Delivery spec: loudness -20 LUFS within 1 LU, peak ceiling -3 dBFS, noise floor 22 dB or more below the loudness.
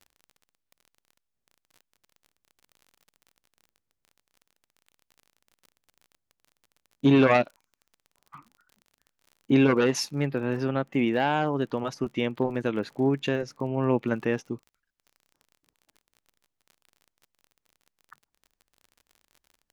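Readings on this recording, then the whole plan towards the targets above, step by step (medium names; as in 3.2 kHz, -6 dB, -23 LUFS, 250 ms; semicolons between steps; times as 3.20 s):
tick rate 34 per s; loudness -26.0 LUFS; peak level -8.0 dBFS; loudness target -20.0 LUFS
-> de-click; trim +6 dB; peak limiter -3 dBFS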